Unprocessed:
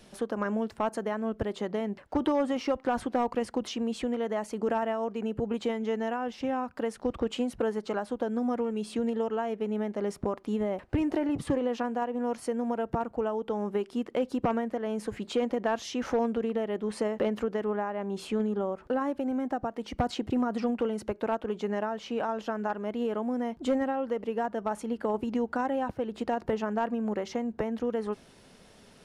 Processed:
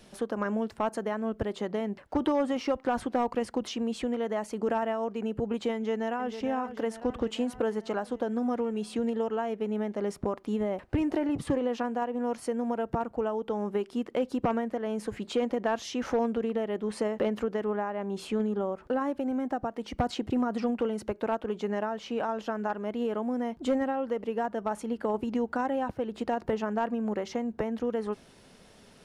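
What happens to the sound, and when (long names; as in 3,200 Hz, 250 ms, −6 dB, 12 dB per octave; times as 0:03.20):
0:05.74–0:06.35: delay throw 450 ms, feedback 65%, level −10.5 dB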